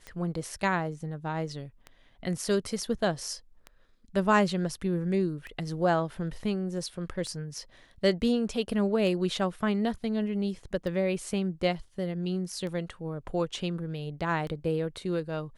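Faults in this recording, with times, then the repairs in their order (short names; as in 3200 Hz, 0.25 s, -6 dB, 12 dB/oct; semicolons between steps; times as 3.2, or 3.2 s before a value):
tick 33 1/3 rpm -26 dBFS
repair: de-click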